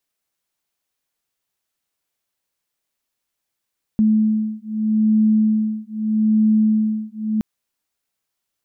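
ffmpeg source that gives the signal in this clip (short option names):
-f lavfi -i "aevalsrc='0.133*(sin(2*PI*216*t)+sin(2*PI*216.8*t))':d=3.42:s=44100"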